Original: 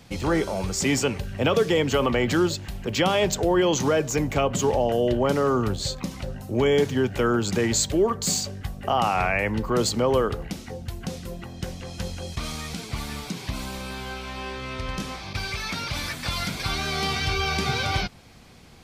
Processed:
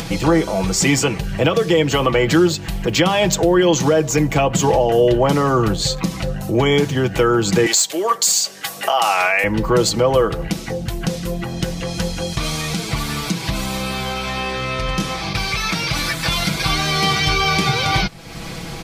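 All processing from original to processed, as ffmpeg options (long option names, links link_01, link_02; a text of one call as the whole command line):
ffmpeg -i in.wav -filter_complex "[0:a]asettb=1/sr,asplit=3[link_01][link_02][link_03];[link_01]atrim=end=7.664[link_04];[link_02]atrim=start=7.66:end=9.44,asetpts=PTS-STARTPTS,afade=type=in:duration=0.004:curve=qsin,afade=type=out:start_time=1.776:duration=0.004:curve=qsin,highshelf=frequency=3100:gain=10,aeval=exprs='clip(val(0),-1,0.335)':channel_layout=same,highpass=520[link_05];[link_03]atrim=start=9.436[link_06];[link_04][link_05]acrossfade=duration=0.004:curve1=hsin:curve2=qsin[link_07];[link_07][link_06]acrossfade=duration=0.004:curve1=qsin:curve2=hsin,aecho=1:1:6.1:0.62,alimiter=limit=-13dB:level=0:latency=1:release=298,acompressor=mode=upward:threshold=-25dB:ratio=2.5,volume=7.5dB" out.wav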